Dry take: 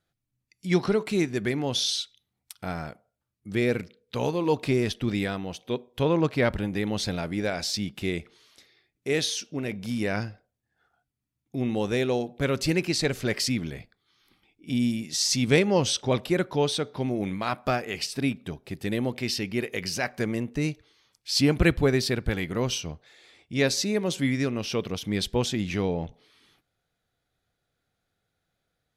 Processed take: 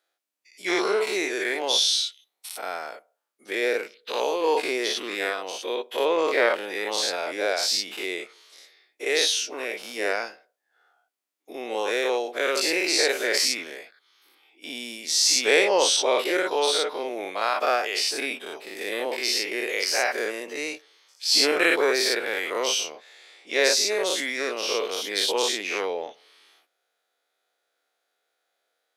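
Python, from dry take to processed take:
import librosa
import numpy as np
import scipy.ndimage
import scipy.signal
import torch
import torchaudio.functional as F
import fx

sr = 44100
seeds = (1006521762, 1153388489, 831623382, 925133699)

y = fx.spec_dilate(x, sr, span_ms=120)
y = scipy.signal.sosfilt(scipy.signal.butter(4, 420.0, 'highpass', fs=sr, output='sos'), y)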